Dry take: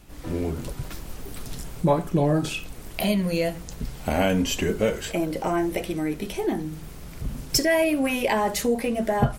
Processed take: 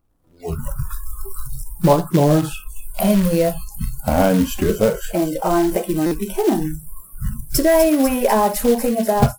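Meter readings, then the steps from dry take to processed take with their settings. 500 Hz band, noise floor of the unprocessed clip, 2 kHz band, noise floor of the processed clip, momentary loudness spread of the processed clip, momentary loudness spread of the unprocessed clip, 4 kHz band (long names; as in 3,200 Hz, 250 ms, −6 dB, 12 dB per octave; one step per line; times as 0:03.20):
+7.0 dB, −41 dBFS, 0.0 dB, −45 dBFS, 17 LU, 15 LU, −0.5 dB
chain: on a send: delay with a high-pass on its return 248 ms, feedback 80%, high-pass 3,800 Hz, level −8 dB
on the sum: background noise brown −36 dBFS
flat-topped bell 3,600 Hz −11.5 dB 2.3 octaves
automatic gain control gain up to 9 dB
floating-point word with a short mantissa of 2 bits
noise reduction from a noise print of the clip's start 28 dB
buffer that repeats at 0:06.06, samples 256, times 8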